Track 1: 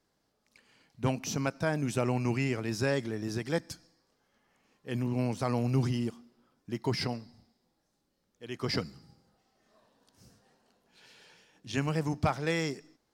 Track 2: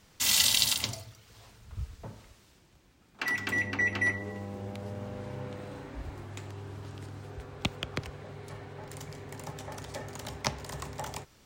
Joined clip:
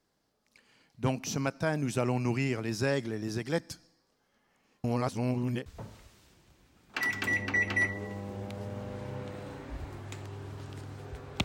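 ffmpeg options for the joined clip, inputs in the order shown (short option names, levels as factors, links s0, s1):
-filter_complex "[0:a]apad=whole_dur=11.44,atrim=end=11.44,asplit=2[s0][s1];[s0]atrim=end=4.842[s2];[s1]atrim=start=4.838:end=5.662,asetpts=PTS-STARTPTS,areverse[s3];[1:a]atrim=start=1.908:end=7.69[s4];[s2][s3]acrossfade=d=0.004:c1=hsin:c2=hsin[s5];[s5][s4]acrossfade=d=0.004:c1=hsin:c2=hsin"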